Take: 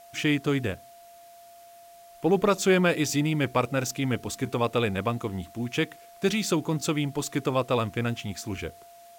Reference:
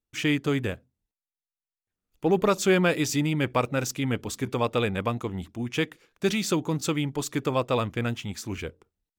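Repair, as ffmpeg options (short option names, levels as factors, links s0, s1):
-af "bandreject=f=690:w=30,agate=range=0.0891:threshold=0.00794"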